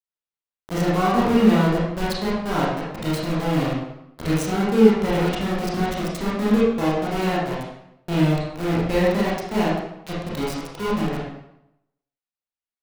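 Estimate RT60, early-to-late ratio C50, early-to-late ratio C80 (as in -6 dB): 0.80 s, -1.5 dB, 3.0 dB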